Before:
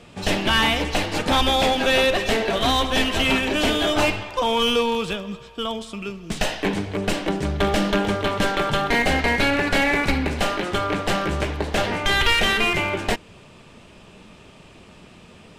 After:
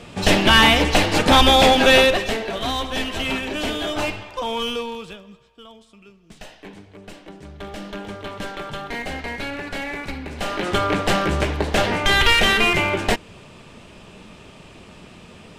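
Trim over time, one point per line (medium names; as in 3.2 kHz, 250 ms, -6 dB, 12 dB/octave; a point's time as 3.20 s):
1.95 s +6 dB
2.40 s -4.5 dB
4.59 s -4.5 dB
5.67 s -17 dB
7.26 s -17 dB
8.31 s -9.5 dB
10.26 s -9.5 dB
10.69 s +3 dB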